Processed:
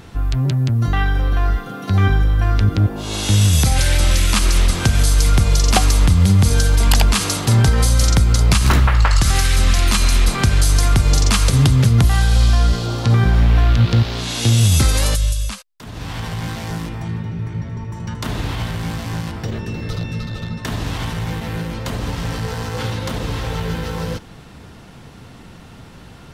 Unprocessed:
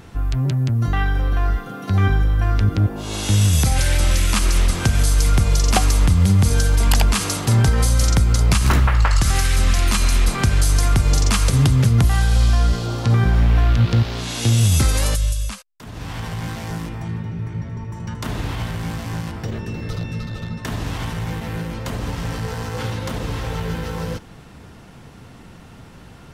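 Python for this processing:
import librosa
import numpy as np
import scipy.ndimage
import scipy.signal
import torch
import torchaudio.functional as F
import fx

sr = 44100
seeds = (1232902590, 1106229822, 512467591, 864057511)

y = fx.peak_eq(x, sr, hz=3900.0, db=3.0, octaves=0.77)
y = y * librosa.db_to_amplitude(2.0)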